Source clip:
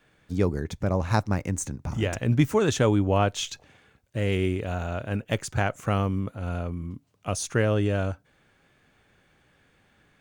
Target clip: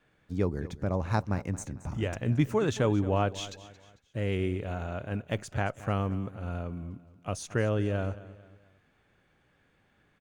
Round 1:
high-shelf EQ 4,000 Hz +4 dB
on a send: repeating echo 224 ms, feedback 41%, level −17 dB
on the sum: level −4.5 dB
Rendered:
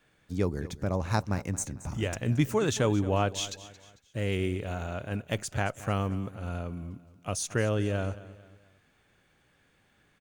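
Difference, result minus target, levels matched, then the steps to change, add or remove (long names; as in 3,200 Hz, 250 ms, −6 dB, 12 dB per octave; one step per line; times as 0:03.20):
8,000 Hz band +8.0 dB
change: high-shelf EQ 4,000 Hz −7 dB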